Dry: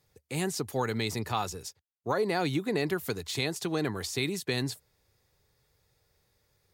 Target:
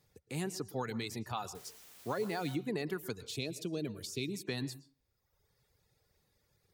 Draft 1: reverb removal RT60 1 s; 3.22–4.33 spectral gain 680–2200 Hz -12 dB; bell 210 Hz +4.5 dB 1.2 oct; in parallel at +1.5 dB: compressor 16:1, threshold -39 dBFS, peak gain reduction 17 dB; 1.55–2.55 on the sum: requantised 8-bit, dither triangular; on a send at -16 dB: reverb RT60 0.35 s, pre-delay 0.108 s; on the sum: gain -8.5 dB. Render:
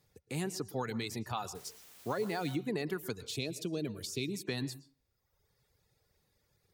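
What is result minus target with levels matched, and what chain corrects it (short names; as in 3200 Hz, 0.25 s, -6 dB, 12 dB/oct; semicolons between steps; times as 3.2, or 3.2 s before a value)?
compressor: peak gain reduction -9 dB
reverb removal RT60 1 s; 3.22–4.33 spectral gain 680–2200 Hz -12 dB; bell 210 Hz +4.5 dB 1.2 oct; in parallel at +1.5 dB: compressor 16:1, threshold -48.5 dBFS, peak gain reduction 25.5 dB; 1.55–2.55 on the sum: requantised 8-bit, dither triangular; on a send at -16 dB: reverb RT60 0.35 s, pre-delay 0.108 s; on the sum: gain -8.5 dB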